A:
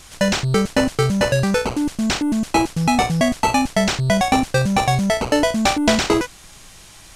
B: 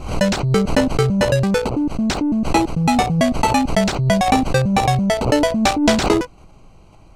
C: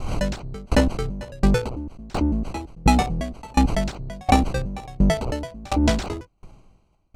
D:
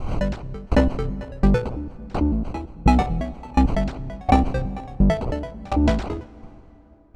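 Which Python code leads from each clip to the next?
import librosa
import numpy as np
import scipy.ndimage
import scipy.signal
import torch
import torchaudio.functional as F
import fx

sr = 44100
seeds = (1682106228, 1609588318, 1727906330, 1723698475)

y1 = fx.wiener(x, sr, points=25)
y1 = fx.pre_swell(y1, sr, db_per_s=84.0)
y1 = y1 * librosa.db_to_amplitude(1.5)
y2 = fx.octave_divider(y1, sr, octaves=2, level_db=3.0)
y2 = fx.tremolo_decay(y2, sr, direction='decaying', hz=1.4, depth_db=28)
y3 = fx.lowpass(y2, sr, hz=1700.0, slope=6)
y3 = fx.rev_plate(y3, sr, seeds[0], rt60_s=3.3, hf_ratio=0.6, predelay_ms=0, drr_db=18.0)
y3 = y3 * librosa.db_to_amplitude(1.0)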